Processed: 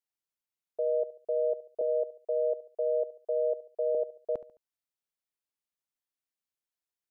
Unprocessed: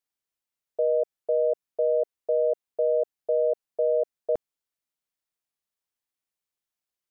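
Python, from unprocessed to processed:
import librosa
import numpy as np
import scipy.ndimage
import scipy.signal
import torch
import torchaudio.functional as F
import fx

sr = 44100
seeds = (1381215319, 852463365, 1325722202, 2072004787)

y = fx.highpass(x, sr, hz=310.0, slope=24, at=(1.81, 3.95))
y = fx.echo_feedback(y, sr, ms=71, feedback_pct=38, wet_db=-16.5)
y = F.gain(torch.from_numpy(y), -6.0).numpy()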